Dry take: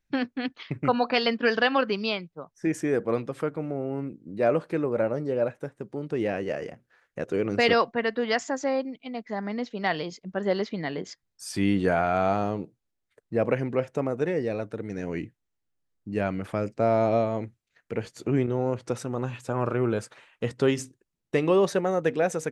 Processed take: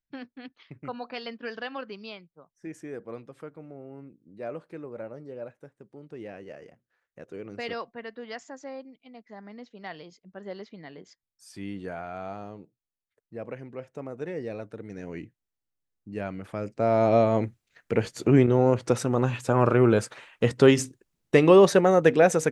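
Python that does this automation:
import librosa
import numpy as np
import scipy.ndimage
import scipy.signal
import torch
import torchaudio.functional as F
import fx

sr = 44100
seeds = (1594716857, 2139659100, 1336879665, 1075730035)

y = fx.gain(x, sr, db=fx.line((13.74, -13.0), (14.45, -6.0), (16.48, -6.0), (17.37, 6.0)))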